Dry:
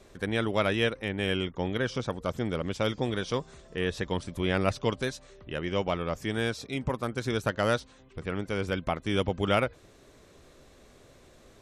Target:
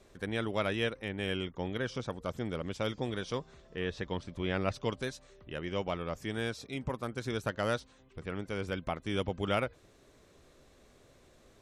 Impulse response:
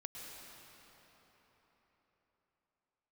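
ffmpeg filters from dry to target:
-filter_complex "[0:a]asettb=1/sr,asplit=3[a][b][c];[a]atrim=end=3.394[d];[b]atrim=start=3.39:end=4.74,asetpts=PTS-STARTPTS,afade=t=in:d=0.004:c=qsin,afade=t=out:st=1.346:d=0.004:c=qsin,lowpass=5.4k[e];[c]atrim=start=4.736[f];[d][e]acrossfade=d=0.004:c1=hsin:c2=qsin[g];[g][f]acrossfade=d=0.004:c1=qsin:c2=hsin,volume=-5.5dB"

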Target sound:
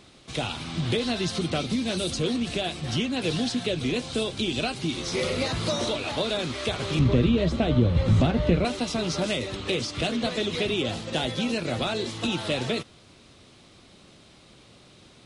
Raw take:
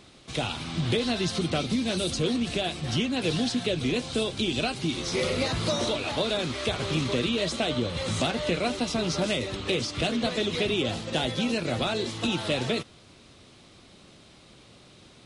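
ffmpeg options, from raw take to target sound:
-filter_complex "[0:a]asettb=1/sr,asplit=3[a][b][c];[a]atrim=end=6.994[d];[b]atrim=start=6.99:end=8.65,asetpts=PTS-STARTPTS,afade=t=in:d=0.004:c=qsin,afade=t=out:st=1.656:d=0.004:c=qsin,aemphasis=mode=reproduction:type=riaa[e];[c]atrim=start=8.646[f];[d][e]acrossfade=d=0.004:c1=hsin:c2=qsin[g];[g][f]acrossfade=d=0.004:c1=qsin:c2=hsin"

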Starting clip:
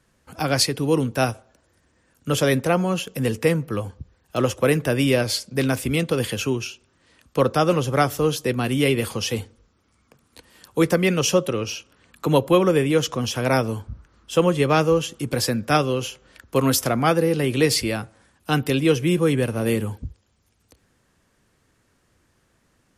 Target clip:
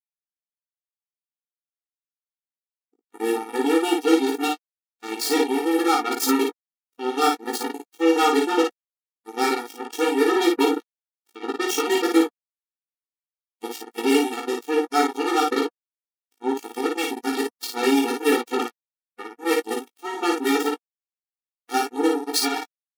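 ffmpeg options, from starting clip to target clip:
-filter_complex "[0:a]areverse,acrusher=bits=2:mix=0:aa=0.5,asplit=2[a][b];[b]aecho=0:1:18|55|72:0.668|0.708|0.168[c];[a][c]amix=inputs=2:normalize=0,afftfilt=real='re*eq(mod(floor(b*sr/1024/240),2),1)':imag='im*eq(mod(floor(b*sr/1024/240),2),1)':win_size=1024:overlap=0.75,volume=-1dB"

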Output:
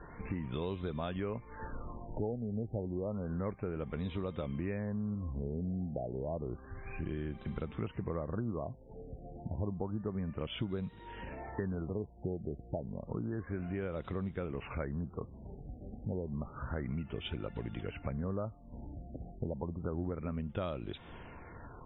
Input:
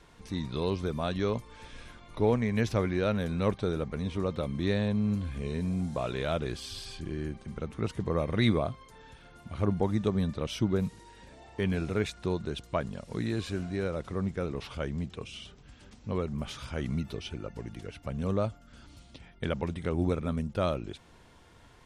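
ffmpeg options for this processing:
-af "acompressor=threshold=-43dB:ratio=5,afftfilt=real='re*lt(b*sr/1024,800*pow(4000/800,0.5+0.5*sin(2*PI*0.3*pts/sr)))':imag='im*lt(b*sr/1024,800*pow(4000/800,0.5+0.5*sin(2*PI*0.3*pts/sr)))':win_size=1024:overlap=0.75,volume=7.5dB"

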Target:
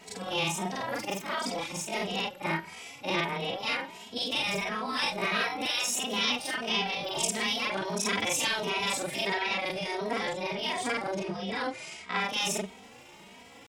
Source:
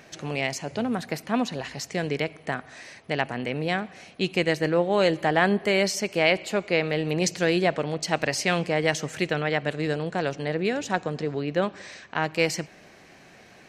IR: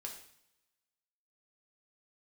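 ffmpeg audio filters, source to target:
-filter_complex "[0:a]afftfilt=real='re':imag='-im':win_size=4096:overlap=0.75,afftfilt=real='re*lt(hypot(re,im),0.141)':imag='im*lt(hypot(re,im),0.141)':win_size=1024:overlap=0.75,asetrate=55563,aresample=44100,atempo=0.793701,asplit=2[a][b];[b]adelay=2.8,afreqshift=1.5[c];[a][c]amix=inputs=2:normalize=1,volume=7.5dB"

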